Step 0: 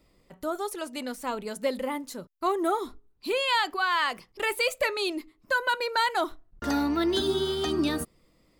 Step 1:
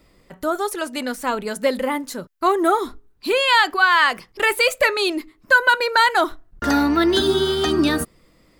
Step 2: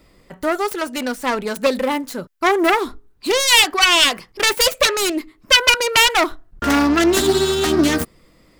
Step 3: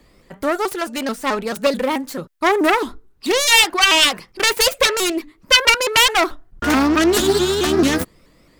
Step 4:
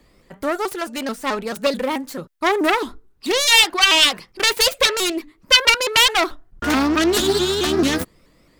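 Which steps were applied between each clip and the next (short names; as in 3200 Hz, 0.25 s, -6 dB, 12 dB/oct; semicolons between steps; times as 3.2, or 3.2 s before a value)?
bell 1600 Hz +5 dB 0.58 oct; gain +8 dB
self-modulated delay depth 0.31 ms; gain +3 dB
shaped vibrato saw up 4.6 Hz, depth 160 cents
dynamic EQ 3800 Hz, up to +4 dB, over -29 dBFS, Q 1.5; gain -2.5 dB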